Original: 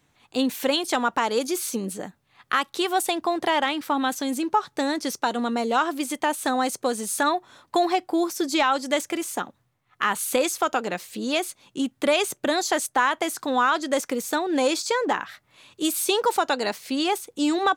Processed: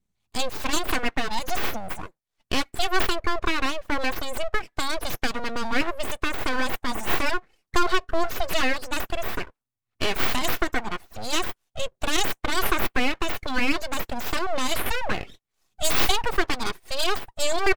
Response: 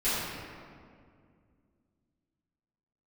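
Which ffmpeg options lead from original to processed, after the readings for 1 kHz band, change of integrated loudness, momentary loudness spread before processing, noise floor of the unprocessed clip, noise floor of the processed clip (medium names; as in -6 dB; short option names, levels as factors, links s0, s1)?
-4.5 dB, -2.5 dB, 7 LU, -69 dBFS, -82 dBFS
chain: -filter_complex "[0:a]afftdn=nr=25:nf=-38,bass=f=250:g=-1,treble=f=4000:g=10,aecho=1:1:2.7:0.59,acrossover=split=140|7500[s0][s1][s2];[s0]acompressor=mode=upward:threshold=0.00126:ratio=2.5[s3];[s3][s1][s2]amix=inputs=3:normalize=0,aeval=exprs='abs(val(0))':c=same,adynamicequalizer=threshold=0.0112:dfrequency=3000:dqfactor=0.7:tfrequency=3000:tqfactor=0.7:attack=5:release=100:ratio=0.375:range=3.5:mode=cutabove:tftype=highshelf"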